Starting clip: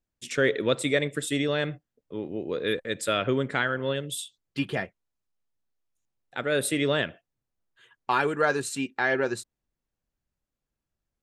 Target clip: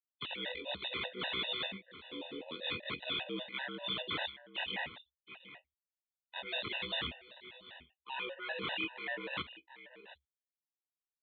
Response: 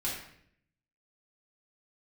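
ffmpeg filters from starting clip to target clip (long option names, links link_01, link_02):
-af "afftfilt=real='re':imag='-im':win_size=2048:overlap=0.75,agate=range=-42dB:threshold=-55dB:ratio=16:detection=peak,equalizer=frequency=890:width=4.1:gain=9,areverse,acompressor=threshold=-36dB:ratio=12,areverse,aeval=exprs='0.0447*(cos(1*acos(clip(val(0)/0.0447,-1,1)))-cos(1*PI/2))+0.000794*(cos(2*acos(clip(val(0)/0.0447,-1,1)))-cos(2*PI/2))+0.000398*(cos(7*acos(clip(val(0)/0.0447,-1,1)))-cos(7*PI/2))':channel_layout=same,aexciter=amount=11.1:drive=1.3:freq=2100,aresample=16000,aeval=exprs='(mod(13.3*val(0)+1,2)-1)/13.3':channel_layout=same,aresample=44100,afreqshift=69,asoftclip=type=tanh:threshold=-24.5dB,aecho=1:1:721:0.178,aresample=8000,aresample=44100,afftfilt=real='re*gt(sin(2*PI*5.1*pts/sr)*(1-2*mod(floor(b*sr/1024/500),2)),0)':imag='im*gt(sin(2*PI*5.1*pts/sr)*(1-2*mod(floor(b*sr/1024/500),2)),0)':win_size=1024:overlap=0.75"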